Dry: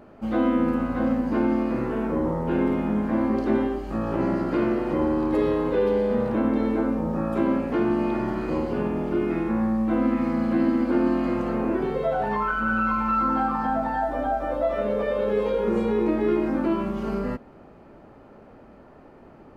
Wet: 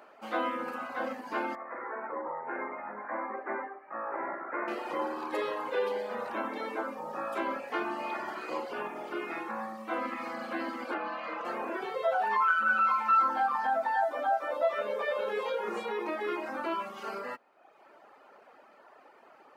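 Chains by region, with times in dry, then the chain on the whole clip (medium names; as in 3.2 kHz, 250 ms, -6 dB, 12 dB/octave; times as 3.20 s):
1.55–4.68 s: elliptic low-pass 2.1 kHz + bass shelf 220 Hz -11.5 dB
10.94–11.45 s: frequency shift -34 Hz + band-pass 290–3800 Hz
whole clip: reverb removal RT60 1 s; high-pass 800 Hz 12 dB/octave; trim +2.5 dB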